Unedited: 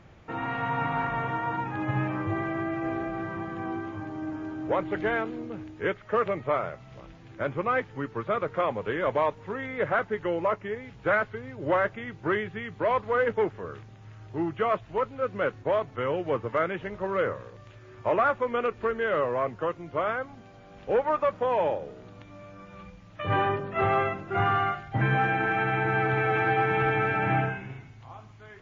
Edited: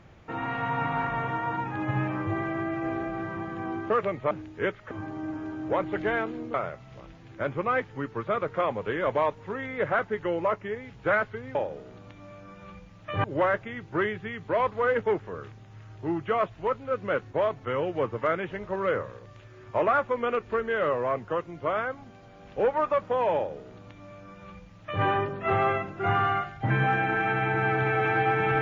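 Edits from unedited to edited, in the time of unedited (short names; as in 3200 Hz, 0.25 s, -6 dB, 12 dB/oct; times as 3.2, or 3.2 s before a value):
3.9–5.53 swap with 6.13–6.54
21.66–23.35 copy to 11.55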